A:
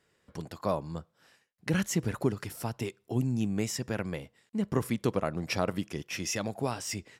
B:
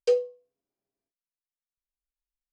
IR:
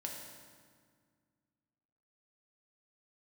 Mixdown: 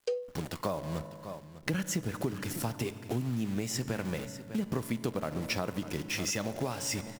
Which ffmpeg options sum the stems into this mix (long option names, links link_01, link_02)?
-filter_complex "[0:a]acrusher=bits=8:dc=4:mix=0:aa=0.000001,volume=2dB,asplit=3[link_01][link_02][link_03];[link_02]volume=-8.5dB[link_04];[link_03]volume=-15dB[link_05];[1:a]volume=-4dB[link_06];[2:a]atrim=start_sample=2205[link_07];[link_04][link_07]afir=irnorm=-1:irlink=0[link_08];[link_05]aecho=0:1:599:1[link_09];[link_01][link_06][link_08][link_09]amix=inputs=4:normalize=0,acompressor=threshold=-29dB:ratio=6"